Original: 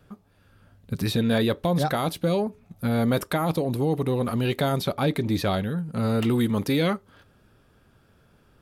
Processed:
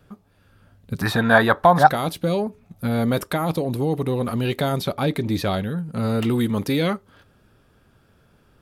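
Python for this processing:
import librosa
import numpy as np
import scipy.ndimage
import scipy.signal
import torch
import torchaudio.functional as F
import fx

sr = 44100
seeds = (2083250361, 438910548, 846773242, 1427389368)

y = fx.band_shelf(x, sr, hz=1100.0, db=16.0, octaves=1.7, at=(1.01, 1.87))
y = y * 10.0 ** (1.5 / 20.0)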